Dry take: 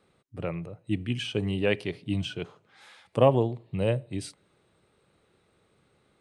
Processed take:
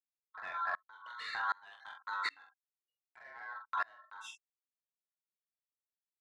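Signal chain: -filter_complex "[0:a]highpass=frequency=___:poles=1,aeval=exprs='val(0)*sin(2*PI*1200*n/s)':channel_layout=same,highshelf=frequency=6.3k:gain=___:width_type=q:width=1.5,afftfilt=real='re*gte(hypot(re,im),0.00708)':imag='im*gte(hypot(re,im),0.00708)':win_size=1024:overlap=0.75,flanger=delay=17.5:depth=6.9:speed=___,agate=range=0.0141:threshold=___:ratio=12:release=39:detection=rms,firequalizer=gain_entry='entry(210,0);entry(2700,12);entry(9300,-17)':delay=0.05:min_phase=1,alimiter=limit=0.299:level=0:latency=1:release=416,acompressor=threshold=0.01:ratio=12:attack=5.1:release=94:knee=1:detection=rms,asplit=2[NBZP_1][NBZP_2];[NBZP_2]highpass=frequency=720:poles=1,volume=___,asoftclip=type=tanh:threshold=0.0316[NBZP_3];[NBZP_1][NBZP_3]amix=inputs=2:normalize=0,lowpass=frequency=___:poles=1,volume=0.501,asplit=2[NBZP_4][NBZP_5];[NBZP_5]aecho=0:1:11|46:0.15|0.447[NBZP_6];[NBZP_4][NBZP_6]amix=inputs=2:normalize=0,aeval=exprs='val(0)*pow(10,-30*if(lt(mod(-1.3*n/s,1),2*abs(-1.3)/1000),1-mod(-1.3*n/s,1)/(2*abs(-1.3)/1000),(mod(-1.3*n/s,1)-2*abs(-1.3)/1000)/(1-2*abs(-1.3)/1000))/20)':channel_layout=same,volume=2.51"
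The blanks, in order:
120, 8.5, 0.45, 0.00158, 3.16, 5.1k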